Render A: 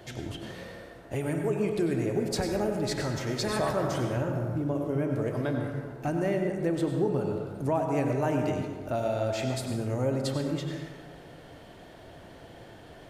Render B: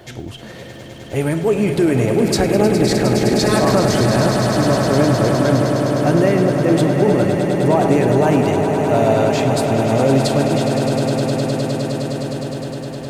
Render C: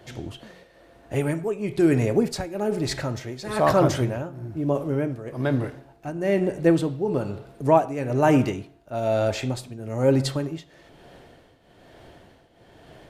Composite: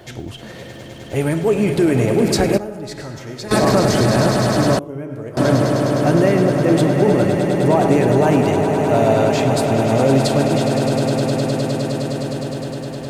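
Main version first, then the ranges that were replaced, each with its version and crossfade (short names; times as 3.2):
B
2.58–3.51 from A
4.79–5.37 from A
not used: C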